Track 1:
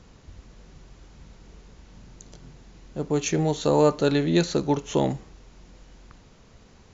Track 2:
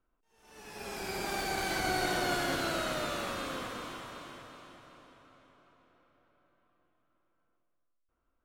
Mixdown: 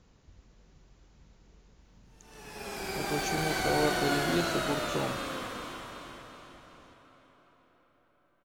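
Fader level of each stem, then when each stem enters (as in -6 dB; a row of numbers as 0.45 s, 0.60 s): -10.5 dB, +1.5 dB; 0.00 s, 1.80 s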